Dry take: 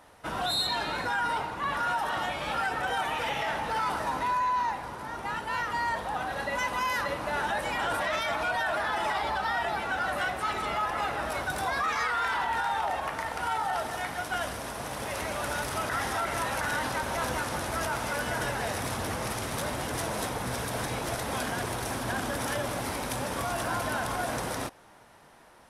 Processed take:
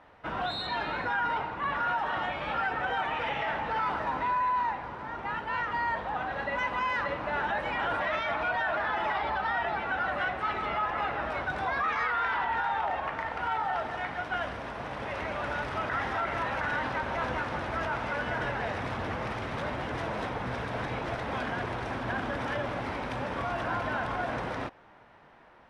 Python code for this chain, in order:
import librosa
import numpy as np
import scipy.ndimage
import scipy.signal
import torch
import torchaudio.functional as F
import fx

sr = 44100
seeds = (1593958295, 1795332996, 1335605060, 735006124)

y = scipy.signal.sosfilt(scipy.signal.cheby1(2, 1.0, 2400.0, 'lowpass', fs=sr, output='sos'), x)